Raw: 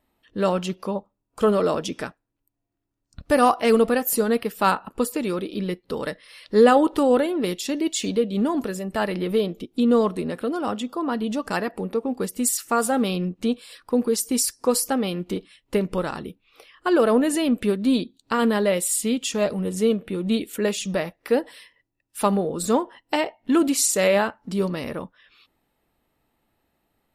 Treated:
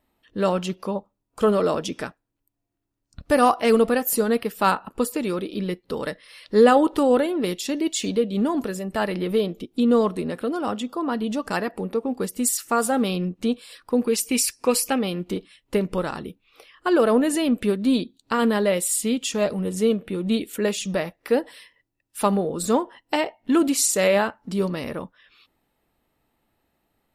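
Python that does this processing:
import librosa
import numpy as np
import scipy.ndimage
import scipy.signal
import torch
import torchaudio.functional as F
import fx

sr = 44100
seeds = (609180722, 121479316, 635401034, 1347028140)

y = fx.peak_eq(x, sr, hz=2500.0, db=14.5, octaves=0.5, at=(14.07, 14.99))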